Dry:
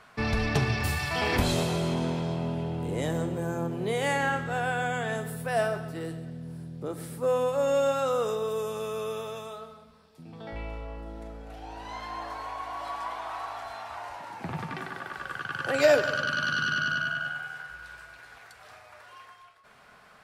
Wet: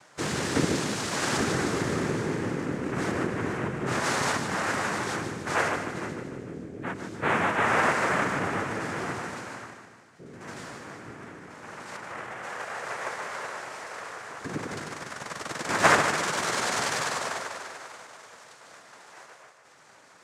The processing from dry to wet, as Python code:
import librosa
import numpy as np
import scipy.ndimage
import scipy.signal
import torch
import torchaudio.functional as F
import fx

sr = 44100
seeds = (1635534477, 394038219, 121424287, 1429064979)

y = fx.tracing_dist(x, sr, depth_ms=0.37)
y = fx.lowpass(y, sr, hz=1200.0, slope=12, at=(11.96, 12.43))
y = fx.noise_vocoder(y, sr, seeds[0], bands=3)
y = fx.echo_feedback(y, sr, ms=150, feedback_pct=54, wet_db=-9)